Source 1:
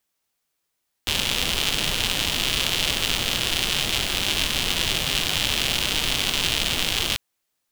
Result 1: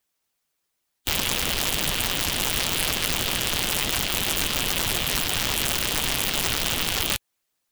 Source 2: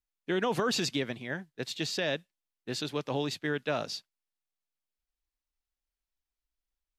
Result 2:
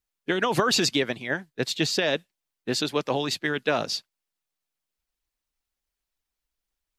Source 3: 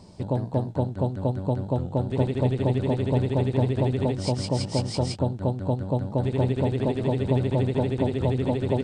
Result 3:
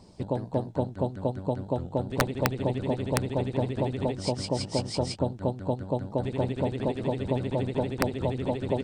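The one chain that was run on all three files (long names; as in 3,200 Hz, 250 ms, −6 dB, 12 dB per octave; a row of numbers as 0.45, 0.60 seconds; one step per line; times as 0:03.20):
wrap-around overflow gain 10.5 dB
harmonic and percussive parts rebalanced harmonic −8 dB
normalise the peak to −9 dBFS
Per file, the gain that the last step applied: +3.0, +9.5, 0.0 decibels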